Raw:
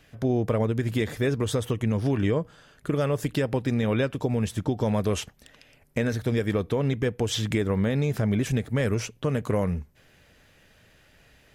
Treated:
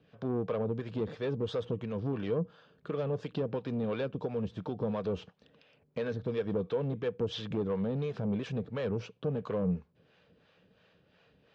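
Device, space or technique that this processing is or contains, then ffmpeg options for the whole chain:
guitar amplifier with harmonic tremolo: -filter_complex "[0:a]acrossover=split=510[s0][s1];[s0]aeval=exprs='val(0)*(1-0.7/2+0.7/2*cos(2*PI*2.9*n/s))':c=same[s2];[s1]aeval=exprs='val(0)*(1-0.7/2-0.7/2*cos(2*PI*2.9*n/s))':c=same[s3];[s2][s3]amix=inputs=2:normalize=0,asoftclip=type=tanh:threshold=0.0596,highpass=100,equalizer=f=180:t=q:w=4:g=8,equalizer=f=470:t=q:w=4:g=8,equalizer=f=1100:t=q:w=4:g=3,equalizer=f=2000:t=q:w=4:g=-8,lowpass=f=4300:w=0.5412,lowpass=f=4300:w=1.3066,volume=0.596"

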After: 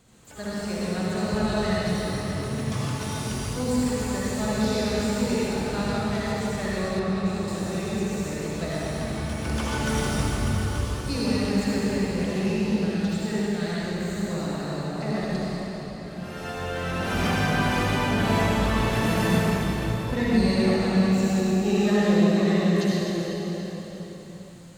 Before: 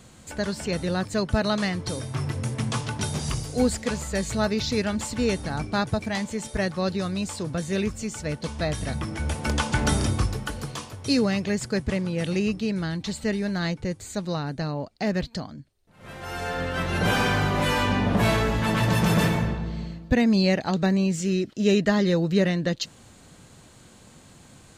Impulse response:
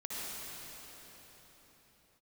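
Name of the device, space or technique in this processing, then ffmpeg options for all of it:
shimmer-style reverb: -filter_complex "[0:a]asplit=2[s0][s1];[s1]asetrate=88200,aresample=44100,atempo=0.5,volume=0.251[s2];[s0][s2]amix=inputs=2:normalize=0[s3];[1:a]atrim=start_sample=2205[s4];[s3][s4]afir=irnorm=-1:irlink=0,asettb=1/sr,asplit=3[s5][s6][s7];[s5]atrim=end=6.994[s8];[s6]atrim=start=6.99:end=7.48,asetpts=PTS-STARTPTS,afade=t=in:d=0.004:c=qsin,afade=t=out:st=0.486:d=0.004:c=qsin,highshelf=f=5500:g=-10[s9];[s7]atrim=start=7.476[s10];[s8][s9]acrossfade=d=0.004:c1=hsin:c2=qsin[s11];[s11][s10]acrossfade=d=0.004:c1=qsin:c2=hsin,volume=0.631"

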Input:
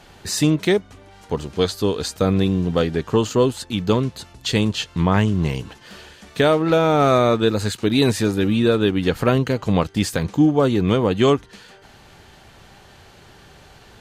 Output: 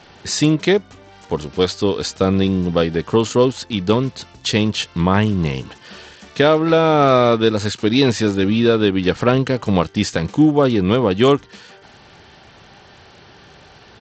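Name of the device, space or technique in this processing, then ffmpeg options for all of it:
Bluetooth headset: -af "highpass=f=100:p=1,aresample=16000,aresample=44100,volume=1.41" -ar 32000 -c:a sbc -b:a 64k

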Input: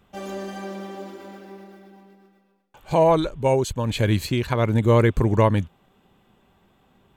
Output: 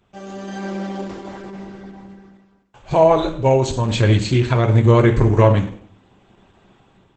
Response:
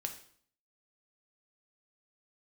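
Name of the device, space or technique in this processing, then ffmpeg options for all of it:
speakerphone in a meeting room: -filter_complex "[0:a]asettb=1/sr,asplit=3[s0][s1][s2];[s0]atrim=end=1.424[s3];[s1]atrim=start=1.42:end=3.35,asetpts=PTS-STARTPTS,afade=t=in:d=0.004:c=qsin,afade=t=out:st=1.926:d=0.004:c=qsin,lowshelf=f=190:g=3[s4];[s2]atrim=start=3.346[s5];[s3][s4]acrossfade=d=0.004:c1=hsin:c2=qsin[s6];[s6][s5]acrossfade=d=0.004:c1=qsin:c2=hsin[s7];[1:a]atrim=start_sample=2205[s8];[s7][s8]afir=irnorm=-1:irlink=0,dynaudnorm=f=230:g=5:m=2.99" -ar 48000 -c:a libopus -b:a 12k

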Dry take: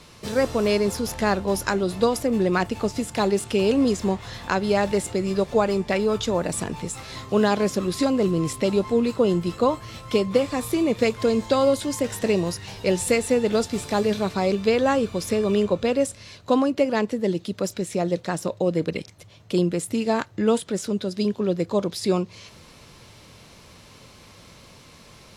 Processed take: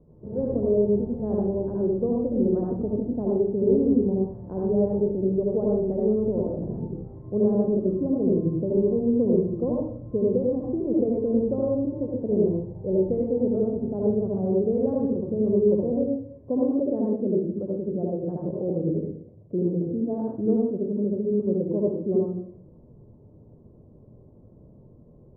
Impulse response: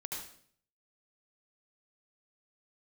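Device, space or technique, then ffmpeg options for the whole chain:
next room: -filter_complex "[0:a]lowpass=f=530:w=0.5412,lowpass=f=530:w=1.3066[s0];[1:a]atrim=start_sample=2205[s1];[s0][s1]afir=irnorm=-1:irlink=0"

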